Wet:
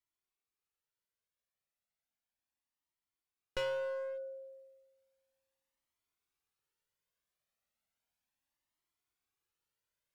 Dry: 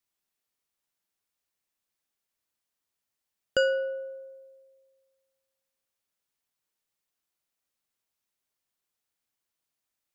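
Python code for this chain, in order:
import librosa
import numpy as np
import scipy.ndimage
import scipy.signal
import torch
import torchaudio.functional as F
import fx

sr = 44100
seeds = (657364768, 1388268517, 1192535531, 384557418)

y = fx.rider(x, sr, range_db=10, speed_s=0.5)
y = fx.bass_treble(y, sr, bass_db=1, treble_db=-5)
y = fx.clip_asym(y, sr, top_db=-37.0, bottom_db=-20.5)
y = fx.comb_cascade(y, sr, direction='rising', hz=0.34)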